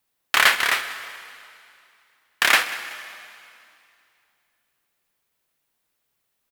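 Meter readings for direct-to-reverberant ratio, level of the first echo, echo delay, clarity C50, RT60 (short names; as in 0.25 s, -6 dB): 10.0 dB, -18.5 dB, 0.189 s, 11.0 dB, 2.5 s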